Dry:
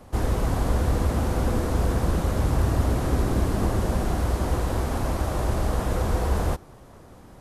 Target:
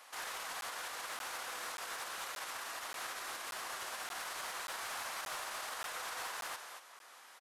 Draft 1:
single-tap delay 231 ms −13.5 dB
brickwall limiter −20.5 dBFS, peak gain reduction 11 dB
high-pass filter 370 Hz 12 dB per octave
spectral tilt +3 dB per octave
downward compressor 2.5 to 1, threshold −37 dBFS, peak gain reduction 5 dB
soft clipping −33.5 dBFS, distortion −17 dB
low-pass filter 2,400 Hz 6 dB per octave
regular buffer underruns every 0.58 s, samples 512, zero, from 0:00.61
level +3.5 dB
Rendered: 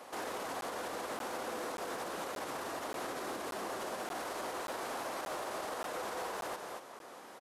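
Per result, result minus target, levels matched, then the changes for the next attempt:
500 Hz band +10.5 dB; downward compressor: peak gain reduction +5 dB
change: high-pass filter 1,400 Hz 12 dB per octave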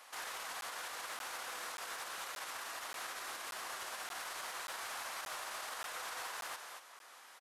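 downward compressor: peak gain reduction +3 dB
remove: downward compressor 2.5 to 1, threshold −37 dBFS, peak gain reduction 3 dB

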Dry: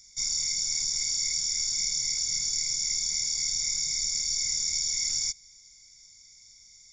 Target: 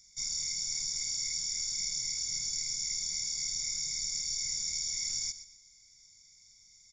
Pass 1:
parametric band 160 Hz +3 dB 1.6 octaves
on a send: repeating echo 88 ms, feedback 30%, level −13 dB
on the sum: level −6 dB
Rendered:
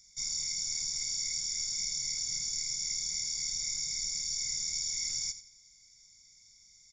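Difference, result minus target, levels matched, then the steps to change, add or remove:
echo 34 ms early
change: repeating echo 122 ms, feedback 30%, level −13 dB

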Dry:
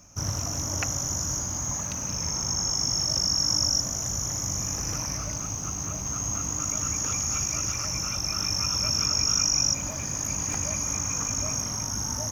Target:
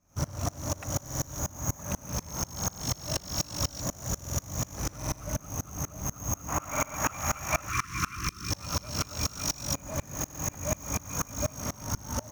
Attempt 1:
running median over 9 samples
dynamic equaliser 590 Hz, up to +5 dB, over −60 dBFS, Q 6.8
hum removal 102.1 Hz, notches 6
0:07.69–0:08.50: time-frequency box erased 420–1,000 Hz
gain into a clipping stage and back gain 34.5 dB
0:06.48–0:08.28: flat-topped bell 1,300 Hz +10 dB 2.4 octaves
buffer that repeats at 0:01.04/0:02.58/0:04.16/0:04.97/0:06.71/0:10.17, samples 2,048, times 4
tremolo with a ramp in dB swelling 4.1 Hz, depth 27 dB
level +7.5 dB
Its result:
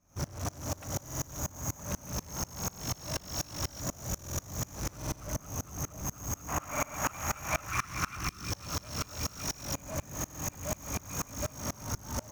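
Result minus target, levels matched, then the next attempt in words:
gain into a clipping stage and back: distortion +15 dB
running median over 9 samples
dynamic equaliser 590 Hz, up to +5 dB, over −60 dBFS, Q 6.8
hum removal 102.1 Hz, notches 6
0:07.69–0:08.50: time-frequency box erased 420–1,000 Hz
gain into a clipping stage and back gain 25 dB
0:06.48–0:08.28: flat-topped bell 1,300 Hz +10 dB 2.4 octaves
buffer that repeats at 0:01.04/0:02.58/0:04.16/0:04.97/0:06.71/0:10.17, samples 2,048, times 4
tremolo with a ramp in dB swelling 4.1 Hz, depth 27 dB
level +7.5 dB

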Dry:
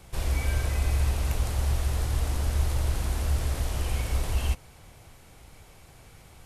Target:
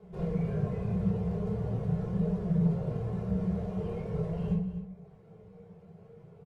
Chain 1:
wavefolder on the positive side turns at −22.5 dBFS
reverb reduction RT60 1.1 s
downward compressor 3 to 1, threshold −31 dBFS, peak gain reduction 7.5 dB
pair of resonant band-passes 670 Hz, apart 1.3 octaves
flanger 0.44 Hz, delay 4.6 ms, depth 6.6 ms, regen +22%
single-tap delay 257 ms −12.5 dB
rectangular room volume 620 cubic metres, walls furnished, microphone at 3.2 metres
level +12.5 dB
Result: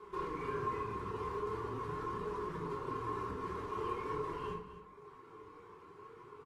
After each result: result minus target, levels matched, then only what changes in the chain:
downward compressor: peak gain reduction +7.5 dB; 250 Hz band −7.0 dB
remove: downward compressor 3 to 1, threshold −31 dBFS, peak gain reduction 7.5 dB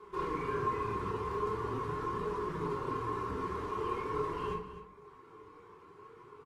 250 Hz band −7.0 dB
change: pair of resonant band-passes 290 Hz, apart 1.3 octaves

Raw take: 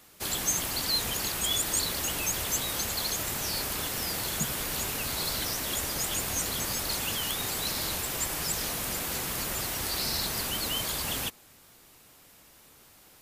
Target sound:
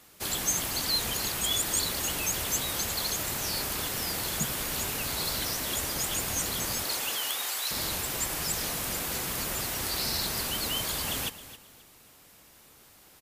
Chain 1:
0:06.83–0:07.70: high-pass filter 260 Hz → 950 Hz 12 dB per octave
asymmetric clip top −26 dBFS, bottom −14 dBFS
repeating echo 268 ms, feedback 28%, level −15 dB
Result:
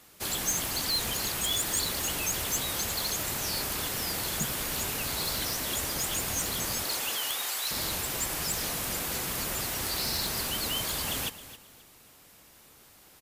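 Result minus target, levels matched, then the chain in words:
asymmetric clip: distortion +8 dB
0:06.83–0:07.70: high-pass filter 260 Hz → 950 Hz 12 dB per octave
asymmetric clip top −16.5 dBFS, bottom −14 dBFS
repeating echo 268 ms, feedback 28%, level −15 dB

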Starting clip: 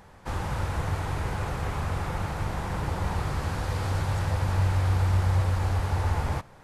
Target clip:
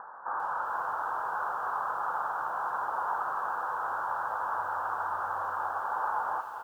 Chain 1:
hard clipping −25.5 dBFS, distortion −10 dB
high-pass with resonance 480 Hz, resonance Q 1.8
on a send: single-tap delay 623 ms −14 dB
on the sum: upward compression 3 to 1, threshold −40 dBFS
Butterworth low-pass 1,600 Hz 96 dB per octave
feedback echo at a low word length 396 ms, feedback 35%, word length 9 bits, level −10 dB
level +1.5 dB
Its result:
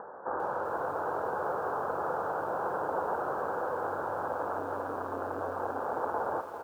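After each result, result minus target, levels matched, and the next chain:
hard clipping: distortion +29 dB; 500 Hz band +12.0 dB
hard clipping −16 dBFS, distortion −38 dB
high-pass with resonance 480 Hz, resonance Q 1.8
on a send: single-tap delay 623 ms −14 dB
on the sum: upward compression 3 to 1, threshold −40 dBFS
Butterworth low-pass 1,600 Hz 96 dB per octave
feedback echo at a low word length 396 ms, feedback 35%, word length 9 bits, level −10 dB
level +1.5 dB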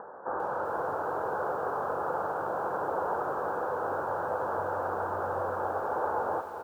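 500 Hz band +12.0 dB
hard clipping −16 dBFS, distortion −38 dB
high-pass with resonance 1,000 Hz, resonance Q 1.8
on a send: single-tap delay 623 ms −14 dB
on the sum: upward compression 3 to 1, threshold −40 dBFS
Butterworth low-pass 1,600 Hz 96 dB per octave
feedback echo at a low word length 396 ms, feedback 35%, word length 9 bits, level −10 dB
level +1.5 dB

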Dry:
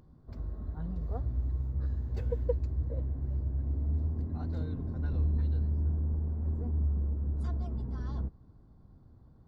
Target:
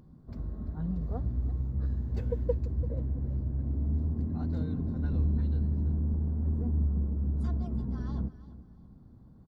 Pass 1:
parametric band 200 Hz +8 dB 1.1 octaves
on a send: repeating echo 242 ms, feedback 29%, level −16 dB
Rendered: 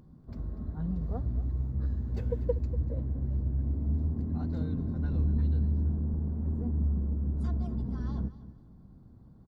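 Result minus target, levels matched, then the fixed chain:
echo 97 ms early
parametric band 200 Hz +8 dB 1.1 octaves
on a send: repeating echo 339 ms, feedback 29%, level −16 dB

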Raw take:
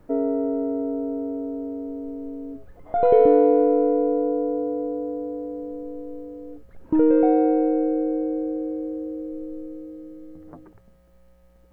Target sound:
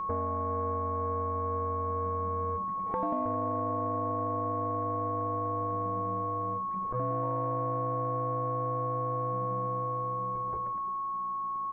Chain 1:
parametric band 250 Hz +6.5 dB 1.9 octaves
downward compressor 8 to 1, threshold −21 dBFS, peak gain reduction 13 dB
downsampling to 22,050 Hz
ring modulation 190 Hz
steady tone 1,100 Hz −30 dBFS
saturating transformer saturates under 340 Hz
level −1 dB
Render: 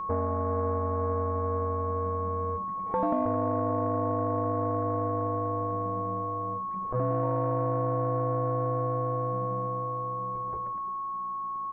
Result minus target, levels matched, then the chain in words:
downward compressor: peak gain reduction −5.5 dB
parametric band 250 Hz +6.5 dB 1.9 octaves
downward compressor 8 to 1, threshold −27.5 dBFS, peak gain reduction 19 dB
downsampling to 22,050 Hz
ring modulation 190 Hz
steady tone 1,100 Hz −30 dBFS
saturating transformer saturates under 340 Hz
level −1 dB

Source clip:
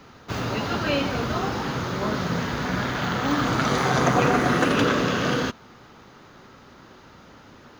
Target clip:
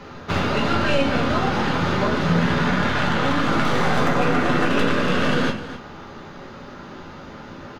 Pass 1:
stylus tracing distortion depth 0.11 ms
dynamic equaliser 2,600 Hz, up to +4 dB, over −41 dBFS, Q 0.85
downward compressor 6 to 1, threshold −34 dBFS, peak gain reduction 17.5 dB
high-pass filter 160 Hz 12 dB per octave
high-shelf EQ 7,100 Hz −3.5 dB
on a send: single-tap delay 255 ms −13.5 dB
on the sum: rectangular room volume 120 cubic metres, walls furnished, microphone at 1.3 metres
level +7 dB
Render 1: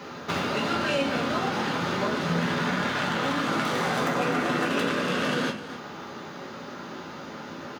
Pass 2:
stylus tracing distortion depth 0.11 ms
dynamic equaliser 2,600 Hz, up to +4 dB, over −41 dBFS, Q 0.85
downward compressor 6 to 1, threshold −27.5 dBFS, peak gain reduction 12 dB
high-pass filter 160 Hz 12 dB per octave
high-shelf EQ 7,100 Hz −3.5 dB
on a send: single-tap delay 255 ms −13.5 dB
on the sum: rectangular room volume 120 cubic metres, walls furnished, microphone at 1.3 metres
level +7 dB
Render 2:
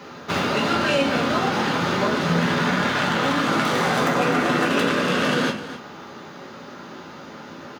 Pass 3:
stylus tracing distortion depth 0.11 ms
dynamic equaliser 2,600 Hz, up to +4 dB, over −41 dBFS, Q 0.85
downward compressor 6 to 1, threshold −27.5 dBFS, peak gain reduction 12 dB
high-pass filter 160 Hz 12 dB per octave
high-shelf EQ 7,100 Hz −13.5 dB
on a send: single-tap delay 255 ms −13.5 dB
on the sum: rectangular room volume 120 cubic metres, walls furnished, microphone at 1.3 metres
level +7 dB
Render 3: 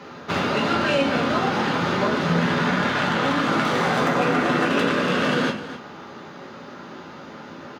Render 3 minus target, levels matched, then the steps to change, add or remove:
125 Hz band −3.5 dB
remove: high-pass filter 160 Hz 12 dB per octave

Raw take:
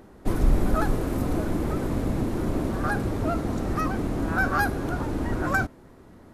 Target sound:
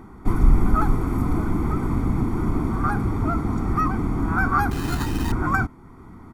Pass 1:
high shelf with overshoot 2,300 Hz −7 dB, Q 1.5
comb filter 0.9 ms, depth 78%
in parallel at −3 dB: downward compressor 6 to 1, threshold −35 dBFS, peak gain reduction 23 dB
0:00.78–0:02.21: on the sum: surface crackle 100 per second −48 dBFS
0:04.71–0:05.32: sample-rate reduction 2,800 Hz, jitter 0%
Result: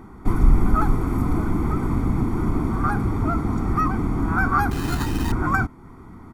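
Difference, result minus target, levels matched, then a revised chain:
downward compressor: peak gain reduction −8 dB
high shelf with overshoot 2,300 Hz −7 dB, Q 1.5
comb filter 0.9 ms, depth 78%
in parallel at −3 dB: downward compressor 6 to 1, threshold −44.5 dBFS, peak gain reduction 31 dB
0:00.78–0:02.21: on the sum: surface crackle 100 per second −48 dBFS
0:04.71–0:05.32: sample-rate reduction 2,800 Hz, jitter 0%

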